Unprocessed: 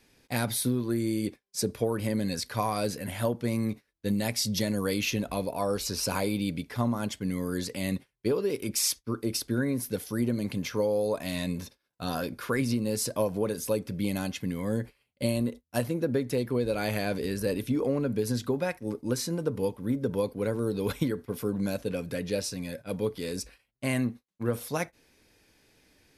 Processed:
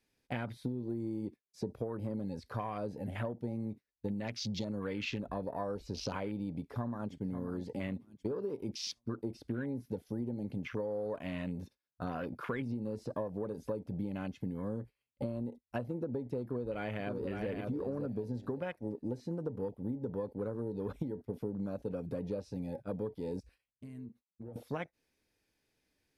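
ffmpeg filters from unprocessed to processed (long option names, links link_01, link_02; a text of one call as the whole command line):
ffmpeg -i in.wav -filter_complex "[0:a]asplit=2[link_01][link_02];[link_02]afade=type=in:start_time=6.56:duration=0.01,afade=type=out:start_time=7.32:duration=0.01,aecho=0:1:540|1080|1620|2160:0.237137|0.0829981|0.0290493|0.0101673[link_03];[link_01][link_03]amix=inputs=2:normalize=0,asplit=2[link_04][link_05];[link_05]afade=type=in:start_time=16.43:duration=0.01,afade=type=out:start_time=17.5:duration=0.01,aecho=0:1:560|1120|1680:0.501187|0.125297|0.0313242[link_06];[link_04][link_06]amix=inputs=2:normalize=0,asettb=1/sr,asplit=3[link_07][link_08][link_09];[link_07]atrim=end=23.404[link_10];[link_08]atrim=start=23.4:end=24.56,asetpts=PTS-STARTPTS,afade=type=in:duration=0.004:curve=qsin,afade=type=out:start_time=1.156:duration=0.004:curve=qsin,acompressor=threshold=-44dB:ratio=5:attack=3.2:release=140:knee=1:detection=peak[link_11];[link_09]atrim=start=24.556[link_12];[link_10][link_11]acrossfade=duration=0.004:curve1=hsin:curve2=qsin[link_13];[link_13][link_12]acrossfade=duration=0.004:curve1=qsin:curve2=hsin,acrossover=split=5000[link_14][link_15];[link_15]acompressor=threshold=-49dB:ratio=4:attack=1:release=60[link_16];[link_14][link_16]amix=inputs=2:normalize=0,afwtdn=0.0112,acompressor=threshold=-34dB:ratio=6" out.wav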